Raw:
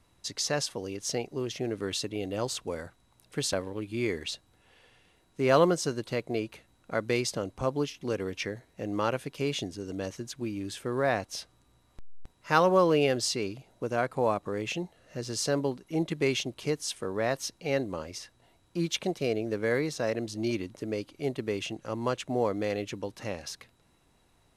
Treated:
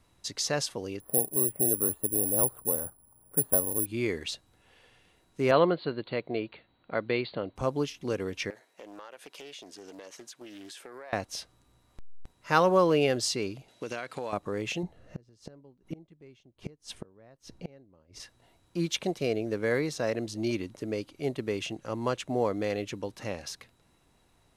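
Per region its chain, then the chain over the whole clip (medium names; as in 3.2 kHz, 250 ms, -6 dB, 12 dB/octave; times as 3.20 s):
1.00–3.86 s: low-pass 1.2 kHz 24 dB/octave + careless resampling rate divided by 4×, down filtered, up zero stuff
5.51–7.56 s: Chebyshev low-pass 4.5 kHz, order 10 + bass shelf 69 Hz -12 dB
8.50–11.13 s: high-pass 500 Hz + compression 10:1, threshold -41 dBFS + loudspeaker Doppler distortion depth 0.25 ms
13.68–14.33 s: frequency weighting D + compression 12:1, threshold -30 dBFS
14.83–18.20 s: tilt EQ -2.5 dB/octave + inverted gate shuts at -25 dBFS, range -29 dB
whole clip: none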